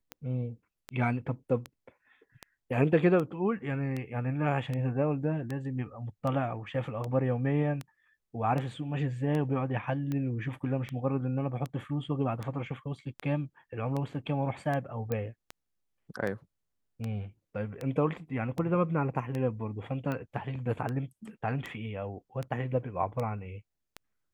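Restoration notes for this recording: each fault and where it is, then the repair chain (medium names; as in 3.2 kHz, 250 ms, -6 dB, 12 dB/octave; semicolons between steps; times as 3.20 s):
tick 78 rpm -22 dBFS
15.12 s: pop -19 dBFS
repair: de-click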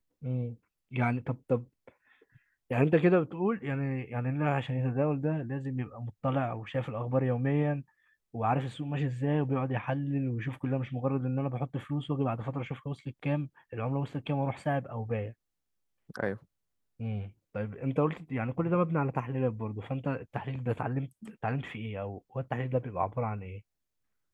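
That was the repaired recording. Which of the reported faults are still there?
nothing left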